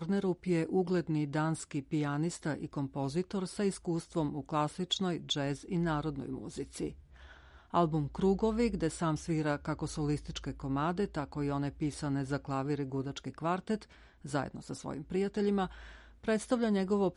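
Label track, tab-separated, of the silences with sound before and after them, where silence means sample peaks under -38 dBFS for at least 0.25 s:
6.890000	7.740000	silence
13.820000	14.250000	silence
15.670000	16.280000	silence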